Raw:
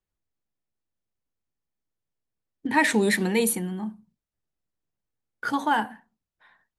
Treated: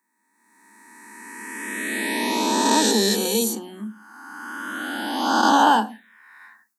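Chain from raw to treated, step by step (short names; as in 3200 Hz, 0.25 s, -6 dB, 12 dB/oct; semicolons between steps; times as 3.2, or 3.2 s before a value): spectral swells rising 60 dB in 2.70 s; Chebyshev high-pass 200 Hz, order 8; high shelf 3700 Hz +12 dB; AGC gain up to 8.5 dB; envelope phaser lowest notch 540 Hz, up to 2100 Hz, full sweep at -13.5 dBFS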